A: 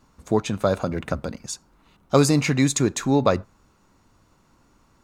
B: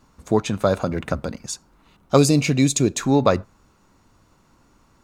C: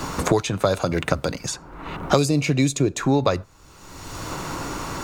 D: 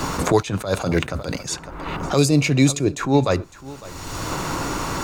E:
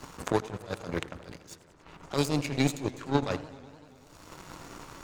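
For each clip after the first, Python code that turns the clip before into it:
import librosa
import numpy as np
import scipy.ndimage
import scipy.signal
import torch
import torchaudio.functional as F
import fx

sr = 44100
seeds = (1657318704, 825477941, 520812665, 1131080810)

y1 = fx.spec_box(x, sr, start_s=2.18, length_s=0.8, low_hz=750.0, high_hz=2200.0, gain_db=-9)
y1 = y1 * 10.0 ** (2.0 / 20.0)
y2 = fx.peak_eq(y1, sr, hz=220.0, db=-14.0, octaves=0.22)
y2 = fx.band_squash(y2, sr, depth_pct=100)
y3 = y2 + 10.0 ** (-21.0 / 20.0) * np.pad(y2, (int(556 * sr / 1000.0), 0))[:len(y2)]
y3 = fx.attack_slew(y3, sr, db_per_s=140.0)
y3 = y3 * 10.0 ** (4.5 / 20.0)
y4 = fx.echo_filtered(y3, sr, ms=81, feedback_pct=74, hz=3000.0, wet_db=-11)
y4 = fx.power_curve(y4, sr, exponent=2.0)
y4 = fx.echo_warbled(y4, sr, ms=97, feedback_pct=80, rate_hz=2.8, cents=215, wet_db=-20.0)
y4 = y4 * 10.0 ** (-5.0 / 20.0)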